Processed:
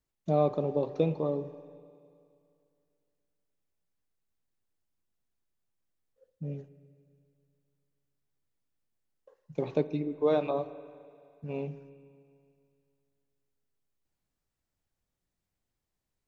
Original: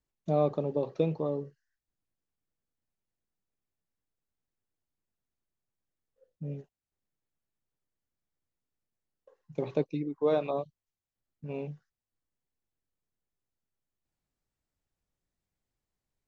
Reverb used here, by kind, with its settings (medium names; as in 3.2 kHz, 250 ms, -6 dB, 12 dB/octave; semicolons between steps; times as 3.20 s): spring tank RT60 2.4 s, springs 36/59 ms, chirp 65 ms, DRR 13.5 dB; trim +1 dB